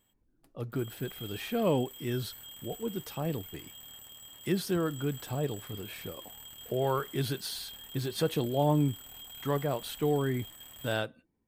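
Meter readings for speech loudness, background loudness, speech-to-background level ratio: -33.0 LUFS, -45.5 LUFS, 12.5 dB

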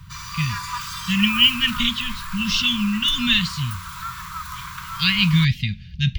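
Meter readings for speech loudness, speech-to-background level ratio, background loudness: -19.5 LUFS, 12.5 dB, -32.0 LUFS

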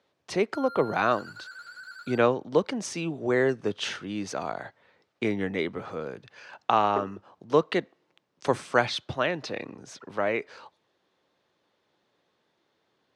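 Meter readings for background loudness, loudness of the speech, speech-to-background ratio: -43.0 LUFS, -28.0 LUFS, 15.0 dB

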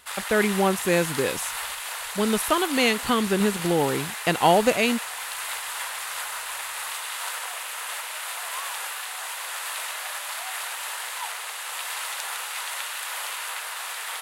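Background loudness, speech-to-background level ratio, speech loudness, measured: -30.5 LUFS, 7.0 dB, -23.5 LUFS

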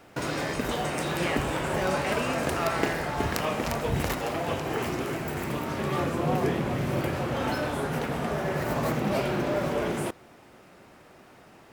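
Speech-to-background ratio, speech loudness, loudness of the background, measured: -4.5 dB, -33.5 LUFS, -29.0 LUFS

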